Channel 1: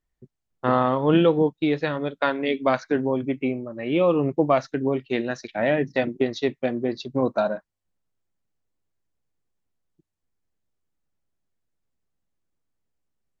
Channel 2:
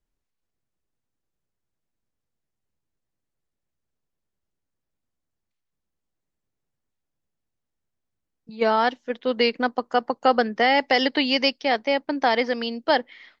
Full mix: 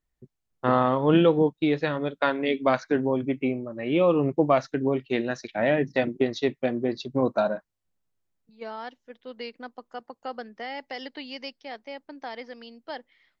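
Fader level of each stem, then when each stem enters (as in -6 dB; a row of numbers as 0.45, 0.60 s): -1.0, -16.5 dB; 0.00, 0.00 s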